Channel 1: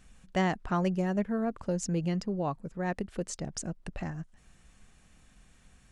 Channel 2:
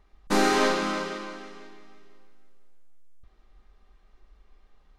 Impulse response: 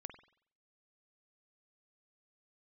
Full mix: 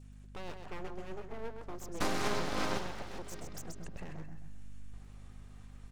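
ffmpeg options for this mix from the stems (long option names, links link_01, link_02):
-filter_complex "[0:a]alimiter=limit=-24dB:level=0:latency=1:release=309,acompressor=mode=upward:threshold=-49dB:ratio=2.5,volume=-8dB,asplit=3[link_01][link_02][link_03];[link_02]volume=-6.5dB[link_04];[1:a]acompressor=threshold=-27dB:ratio=5,aeval=exprs='0.158*(cos(1*acos(clip(val(0)/0.158,-1,1)))-cos(1*PI/2))+0.0355*(cos(4*acos(clip(val(0)/0.158,-1,1)))-cos(4*PI/2))':channel_layout=same,adelay=1700,volume=0.5dB,asplit=2[link_05][link_06];[link_06]volume=-6.5dB[link_07];[link_03]apad=whole_len=294874[link_08];[link_05][link_08]sidechaincompress=threshold=-48dB:ratio=8:attack=9:release=198[link_09];[2:a]atrim=start_sample=2205[link_10];[link_07][link_10]afir=irnorm=-1:irlink=0[link_11];[link_04]aecho=0:1:130|260|390|520|650|780:1|0.4|0.16|0.064|0.0256|0.0102[link_12];[link_01][link_09][link_11][link_12]amix=inputs=4:normalize=0,adynamicequalizer=threshold=0.00316:dfrequency=1600:dqfactor=1.1:tfrequency=1600:tqfactor=1.1:attack=5:release=100:ratio=0.375:range=3:mode=cutabove:tftype=bell,aeval=exprs='abs(val(0))':channel_layout=same,aeval=exprs='val(0)+0.00282*(sin(2*PI*50*n/s)+sin(2*PI*2*50*n/s)/2+sin(2*PI*3*50*n/s)/3+sin(2*PI*4*50*n/s)/4+sin(2*PI*5*50*n/s)/5)':channel_layout=same"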